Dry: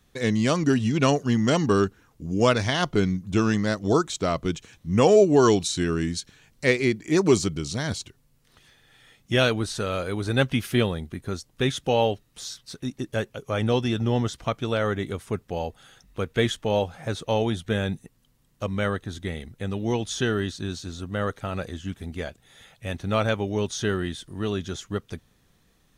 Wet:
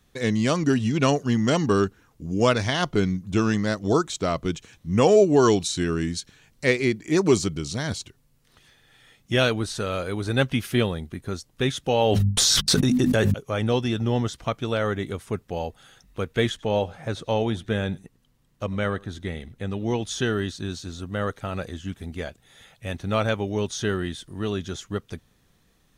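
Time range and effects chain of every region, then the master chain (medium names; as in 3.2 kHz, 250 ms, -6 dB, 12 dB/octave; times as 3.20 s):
12.01–13.34 s: gate -51 dBFS, range -56 dB + hum notches 50/100/150/200/250 Hz + level flattener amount 100%
16.49–20.02 s: treble shelf 6 kHz -6 dB + delay 96 ms -23.5 dB
whole clip: none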